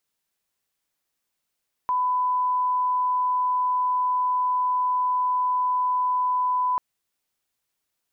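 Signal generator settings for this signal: line-up tone -20 dBFS 4.89 s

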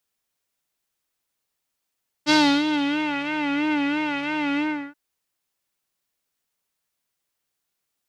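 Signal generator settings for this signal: synth patch with vibrato D4, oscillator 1 square, interval 0 st, detune 6 cents, oscillator 2 level -1.5 dB, sub -25.5 dB, noise -11 dB, filter lowpass, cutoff 1.7 kHz, Q 2.5, filter envelope 1.5 oct, filter decay 0.86 s, attack 41 ms, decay 0.33 s, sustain -11 dB, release 0.35 s, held 2.33 s, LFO 3 Hz, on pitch 77 cents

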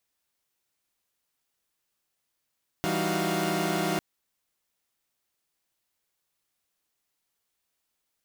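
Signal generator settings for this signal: chord E3/G3/D#4/F#4/F5 saw, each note -29.5 dBFS 1.15 s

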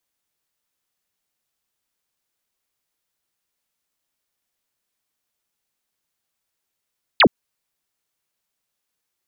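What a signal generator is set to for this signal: laser zap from 4.8 kHz, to 160 Hz, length 0.07 s sine, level -8.5 dB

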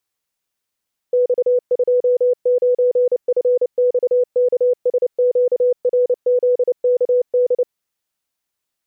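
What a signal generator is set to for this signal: Morse "X29FXKSQRZKD" 29 wpm 495 Hz -11.5 dBFS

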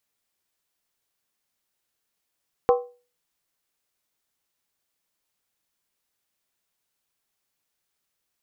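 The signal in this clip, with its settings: skin hit, lowest mode 488 Hz, decay 0.35 s, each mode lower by 5.5 dB, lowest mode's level -12 dB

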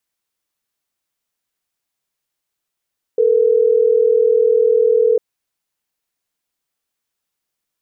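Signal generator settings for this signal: call progress tone ringback tone, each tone -13 dBFS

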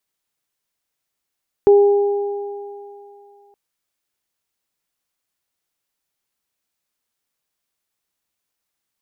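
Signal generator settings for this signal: additive tone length 1.87 s, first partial 405 Hz, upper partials -15.5 dB, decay 2.42 s, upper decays 3.58 s, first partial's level -6 dB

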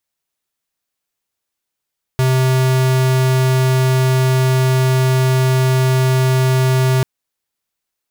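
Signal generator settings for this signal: tone square 130 Hz -13.5 dBFS 4.84 s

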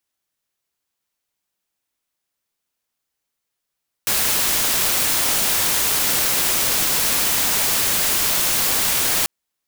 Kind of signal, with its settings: noise white, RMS -19 dBFS 5.19 s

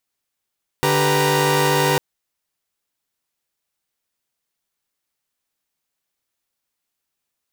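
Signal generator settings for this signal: chord D3/G4/B4/A#5 saw, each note -18.5 dBFS 1.15 s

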